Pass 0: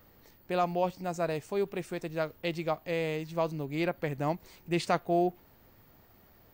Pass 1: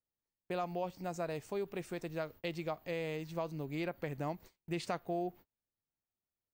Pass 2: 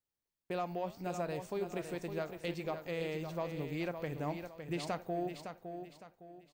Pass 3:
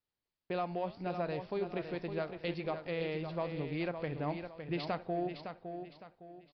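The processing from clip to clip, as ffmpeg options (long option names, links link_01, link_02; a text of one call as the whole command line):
ffmpeg -i in.wav -af "acompressor=threshold=-32dB:ratio=2.5,agate=range=-36dB:threshold=-49dB:ratio=16:detection=peak,volume=-3.5dB" out.wav
ffmpeg -i in.wav -filter_complex "[0:a]asoftclip=type=tanh:threshold=-25.5dB,flanger=delay=6.9:depth=8.4:regen=-85:speed=0.79:shape=sinusoidal,asplit=2[link_01][link_02];[link_02]aecho=0:1:560|1120|1680|2240:0.398|0.139|0.0488|0.0171[link_03];[link_01][link_03]amix=inputs=2:normalize=0,volume=5dB" out.wav
ffmpeg -i in.wav -af "aresample=11025,aresample=44100,volume=1.5dB" out.wav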